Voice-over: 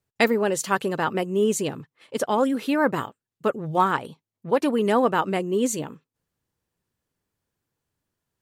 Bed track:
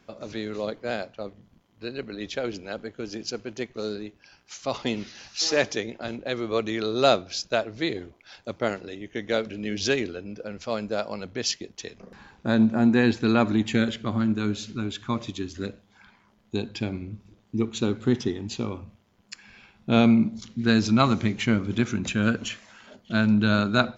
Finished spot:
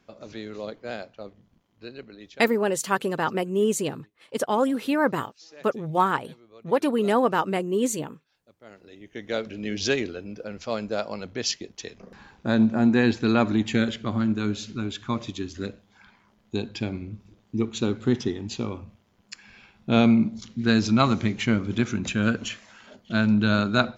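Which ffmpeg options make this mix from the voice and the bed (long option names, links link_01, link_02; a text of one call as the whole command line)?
ffmpeg -i stem1.wav -i stem2.wav -filter_complex "[0:a]adelay=2200,volume=-1dB[link_01];[1:a]volume=20.5dB,afade=type=out:start_time=1.74:duration=0.82:silence=0.0944061,afade=type=in:start_time=8.64:duration=1.03:silence=0.0562341[link_02];[link_01][link_02]amix=inputs=2:normalize=0" out.wav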